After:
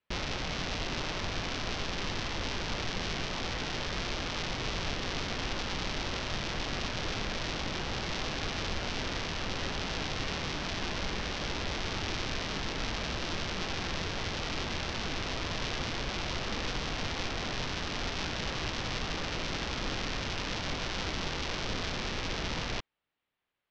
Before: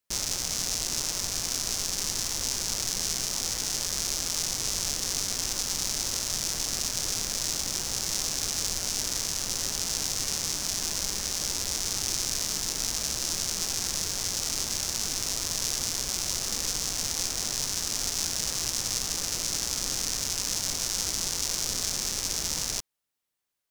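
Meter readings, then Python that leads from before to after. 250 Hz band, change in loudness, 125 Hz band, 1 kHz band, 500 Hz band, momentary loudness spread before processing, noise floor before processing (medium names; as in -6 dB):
+4.5 dB, -7.0 dB, +4.5 dB, +4.5 dB, +4.5 dB, 1 LU, -34 dBFS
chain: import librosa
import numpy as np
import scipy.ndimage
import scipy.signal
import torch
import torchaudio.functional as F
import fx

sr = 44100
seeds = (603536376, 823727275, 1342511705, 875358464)

y = scipy.signal.sosfilt(scipy.signal.butter(4, 3300.0, 'lowpass', fs=sr, output='sos'), x)
y = y * librosa.db_to_amplitude(4.5)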